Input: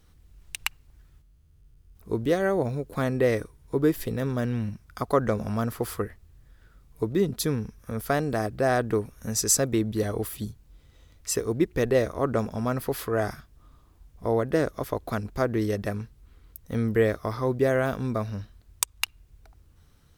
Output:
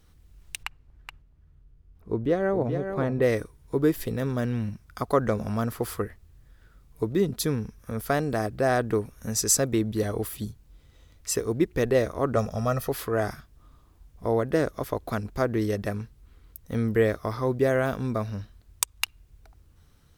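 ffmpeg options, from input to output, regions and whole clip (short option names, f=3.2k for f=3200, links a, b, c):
-filter_complex "[0:a]asettb=1/sr,asplit=3[a][b][c];[a]atrim=end=0.634[d];[b]atrim=start=0.63:end=3.22,asetpts=PTS-STARTPTS,afade=t=in:d=0.004:c=qsin,afade=t=out:st=2.586:d=0.004:c=qsin,lowpass=f=1.4k:p=1,aecho=1:1:424:0.422,atrim=end_sample=114219[e];[c]atrim=start=3.216[f];[d][e]acrossfade=d=0.004:c1=hsin:c2=qsin[g];[g][f]acrossfade=d=0.004:c1=qsin:c2=hsin,asettb=1/sr,asplit=3[h][i][j];[h]atrim=end=12.364[k];[i]atrim=start=12.36:end=12.89,asetpts=PTS-STARTPTS,afade=t=in:d=0.004:c=qsin,afade=t=out:st=0.526:d=0.004:c=qsin,equalizer=f=6k:w=6.3:g=7.5,bandreject=f=2.1k:w=10,aecho=1:1:1.6:0.66,atrim=end_sample=23373[l];[j]atrim=start=12.886[m];[k][l]acrossfade=d=0.004:c1=hsin:c2=qsin[n];[n][m]acrossfade=d=0.004:c1=qsin:c2=hsin"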